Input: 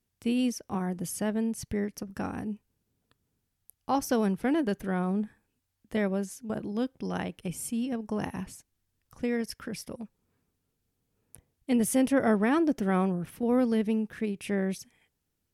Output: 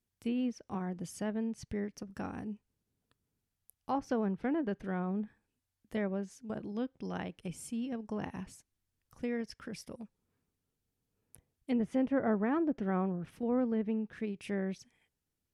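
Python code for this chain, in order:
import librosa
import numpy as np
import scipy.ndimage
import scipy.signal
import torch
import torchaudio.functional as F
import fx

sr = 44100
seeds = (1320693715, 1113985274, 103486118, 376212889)

y = fx.env_lowpass_down(x, sr, base_hz=1700.0, full_db=-22.0)
y = y * 10.0 ** (-6.0 / 20.0)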